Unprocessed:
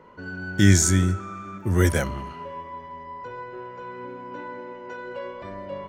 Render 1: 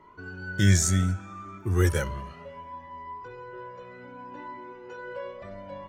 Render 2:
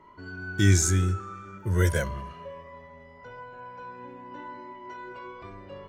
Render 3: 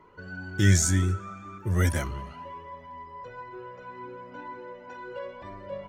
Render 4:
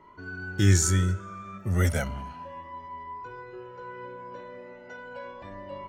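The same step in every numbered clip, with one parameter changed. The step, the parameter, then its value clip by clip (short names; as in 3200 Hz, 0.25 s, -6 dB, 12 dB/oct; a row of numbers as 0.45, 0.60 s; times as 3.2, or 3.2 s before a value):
cascading flanger, rate: 0.66, 0.21, 2, 0.34 Hz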